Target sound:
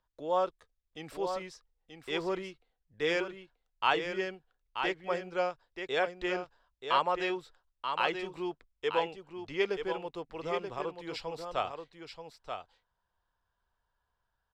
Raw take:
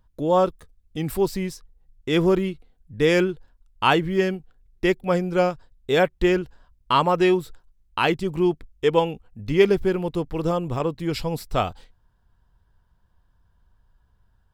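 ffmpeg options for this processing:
-filter_complex "[0:a]acrossover=split=440 7100:gain=0.158 1 0.0794[a][b][c];[a][b][c]amix=inputs=3:normalize=0,aecho=1:1:932:0.447,volume=-8dB"

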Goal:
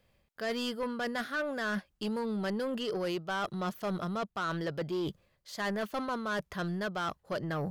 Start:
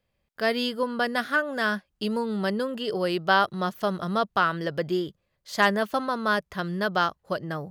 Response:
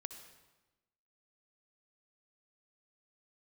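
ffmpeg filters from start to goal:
-af "areverse,acompressor=threshold=-37dB:ratio=4,areverse,asoftclip=type=tanh:threshold=-34.5dB,volume=7dB"

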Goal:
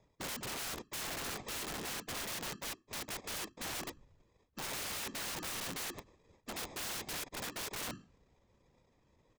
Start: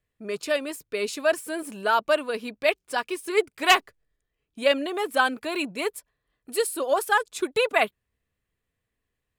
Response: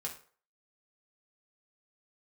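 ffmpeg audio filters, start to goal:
-af "bandreject=f=4.1k:w=8.2,afftfilt=real='re*lt(hypot(re,im),0.501)':imag='im*lt(hypot(re,im),0.501)':win_size=1024:overlap=0.75,equalizer=f=510:w=7.6:g=8.5,bandreject=f=50:t=h:w=6,bandreject=f=100:t=h:w=6,bandreject=f=150:t=h:w=6,bandreject=f=200:t=h:w=6,bandreject=f=250:t=h:w=6,bandreject=f=300:t=h:w=6,areverse,acompressor=threshold=-40dB:ratio=12,areverse,alimiter=level_in=13.5dB:limit=-24dB:level=0:latency=1:release=28,volume=-13.5dB,aresample=16000,acrusher=samples=11:mix=1:aa=0.000001,aresample=44100,afftfilt=real='hypot(re,im)*cos(2*PI*random(0))':imag='hypot(re,im)*sin(2*PI*random(1))':win_size=512:overlap=0.75,aeval=exprs='(mod(447*val(0)+1,2)-1)/447':c=same,volume=17.5dB"

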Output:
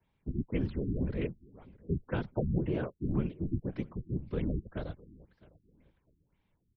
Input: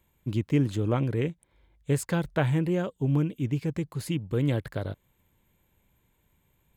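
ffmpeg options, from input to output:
-filter_complex "[0:a]afftfilt=real='hypot(re,im)*cos(2*PI*random(0))':imag='hypot(re,im)*sin(2*PI*random(1))':win_size=512:overlap=0.75,afreqshift=-15,asplit=2[a][b];[b]aecho=0:1:657|1314:0.075|0.0225[c];[a][c]amix=inputs=2:normalize=0,afftfilt=real='re*lt(b*sr/1024,380*pow(6100/380,0.5+0.5*sin(2*PI*1.9*pts/sr)))':imag='im*lt(b*sr/1024,380*pow(6100/380,0.5+0.5*sin(2*PI*1.9*pts/sr)))':win_size=1024:overlap=0.75"

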